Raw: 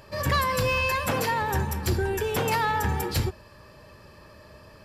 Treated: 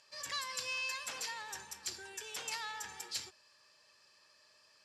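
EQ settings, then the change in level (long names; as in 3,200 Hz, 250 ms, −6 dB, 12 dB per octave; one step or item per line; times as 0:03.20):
resonant band-pass 6,900 Hz, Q 1.4
high-frequency loss of the air 50 metres
+1.0 dB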